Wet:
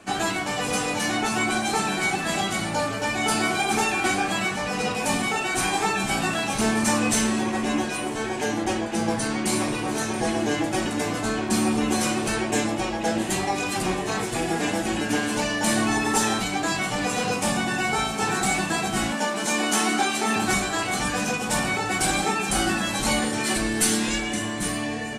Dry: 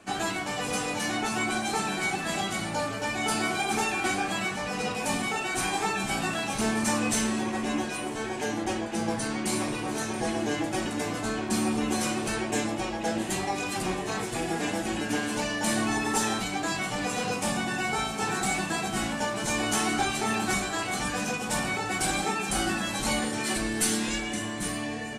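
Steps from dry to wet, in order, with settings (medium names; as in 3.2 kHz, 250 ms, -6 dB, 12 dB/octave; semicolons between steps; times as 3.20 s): 19.12–20.36 s: Chebyshev high-pass 200 Hz, order 3; trim +4.5 dB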